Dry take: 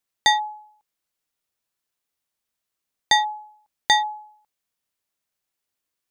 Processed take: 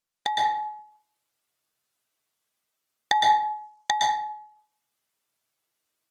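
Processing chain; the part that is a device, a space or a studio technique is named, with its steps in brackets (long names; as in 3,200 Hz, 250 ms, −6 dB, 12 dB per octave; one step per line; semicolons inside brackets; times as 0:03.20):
treble cut that deepens with the level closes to 890 Hz, closed at −19 dBFS
0:03.15–0:03.92: graphic EQ with 15 bands 400 Hz −7 dB, 1,000 Hz +4 dB, 6,300 Hz +8 dB
far-field microphone of a smart speaker (convolution reverb RT60 0.55 s, pre-delay 110 ms, DRR −2 dB; high-pass filter 150 Hz 6 dB per octave; automatic gain control gain up to 6.5 dB; level −6 dB; Opus 20 kbit/s 48,000 Hz)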